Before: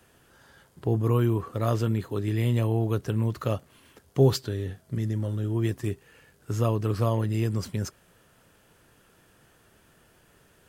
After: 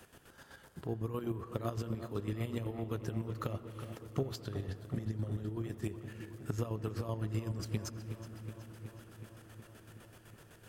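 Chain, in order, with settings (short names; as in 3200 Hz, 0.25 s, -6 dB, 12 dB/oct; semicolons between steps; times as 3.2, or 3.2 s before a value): notches 60/120 Hz; compressor 6:1, threshold -35 dBFS, peak gain reduction 19.5 dB; chopper 7.9 Hz, depth 60%, duty 40%; darkening echo 0.37 s, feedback 75%, low-pass 4400 Hz, level -11 dB; on a send at -15.5 dB: reverb RT60 3.3 s, pre-delay 76 ms; on the sum: gain +3 dB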